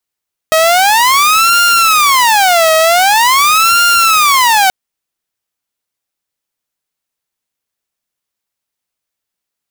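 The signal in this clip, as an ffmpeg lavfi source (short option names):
-f lavfi -i "aevalsrc='0.631*(2*mod((1018.5*t-381.5/(2*PI*0.45)*sin(2*PI*0.45*t)),1)-1)':d=4.18:s=44100"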